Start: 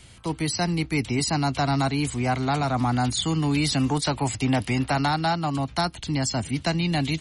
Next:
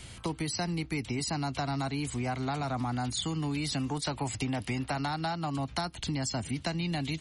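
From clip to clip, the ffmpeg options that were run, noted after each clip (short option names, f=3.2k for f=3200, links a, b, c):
-af "acompressor=threshold=-33dB:ratio=5,volume=2.5dB"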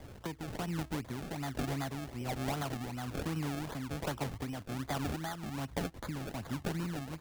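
-af "acrusher=samples=31:mix=1:aa=0.000001:lfo=1:lforange=31:lforate=2.6,tremolo=f=1.2:d=0.47,volume=-3dB"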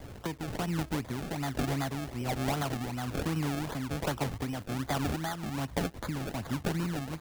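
-af "acrusher=bits=9:mix=0:aa=0.000001,volume=4.5dB"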